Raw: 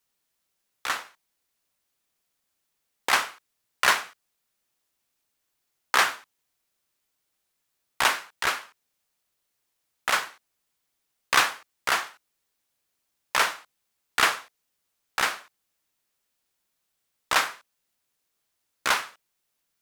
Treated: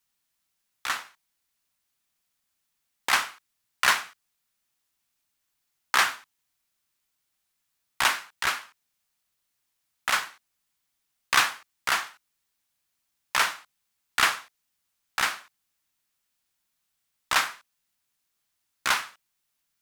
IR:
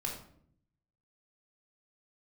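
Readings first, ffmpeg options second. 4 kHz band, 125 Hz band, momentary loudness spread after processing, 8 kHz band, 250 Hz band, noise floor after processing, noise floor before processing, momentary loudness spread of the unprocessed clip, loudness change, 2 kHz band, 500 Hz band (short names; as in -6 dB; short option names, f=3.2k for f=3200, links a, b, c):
0.0 dB, -0.5 dB, 14 LU, 0.0 dB, -3.0 dB, -79 dBFS, -78 dBFS, 14 LU, -0.5 dB, -0.5 dB, -5.5 dB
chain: -af "equalizer=f=470:t=o:w=1.2:g=-7.5"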